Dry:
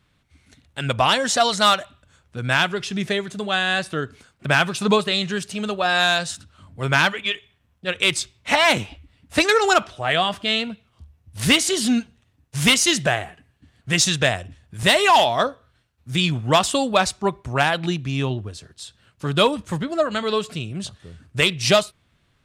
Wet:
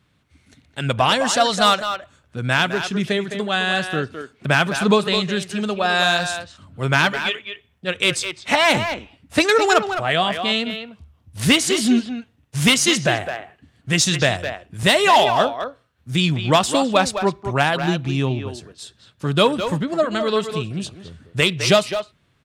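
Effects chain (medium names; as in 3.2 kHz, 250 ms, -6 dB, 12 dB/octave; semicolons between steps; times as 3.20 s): high-pass 160 Hz 6 dB/octave; bass shelf 310 Hz +7.5 dB; speakerphone echo 210 ms, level -7 dB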